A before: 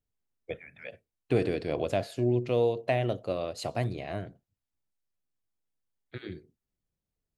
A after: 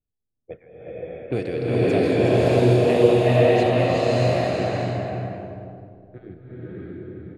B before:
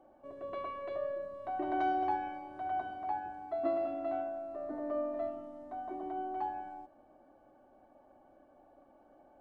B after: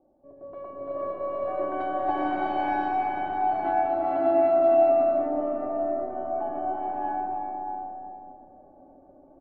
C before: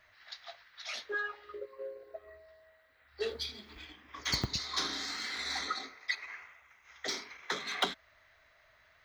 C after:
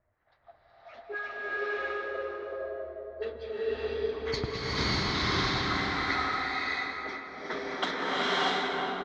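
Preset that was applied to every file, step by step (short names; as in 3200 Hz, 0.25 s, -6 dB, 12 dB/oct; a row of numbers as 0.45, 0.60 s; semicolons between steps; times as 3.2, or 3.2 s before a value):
regenerating reverse delay 0.26 s, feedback 57%, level -12 dB; on a send: bouncing-ball echo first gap 0.37 s, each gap 0.7×, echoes 5; on the sum: low-pass opened by the level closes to 510 Hz, open at -23 dBFS; bloom reverb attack 0.62 s, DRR -8.5 dB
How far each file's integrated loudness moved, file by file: +10.5, +11.5, +5.5 LU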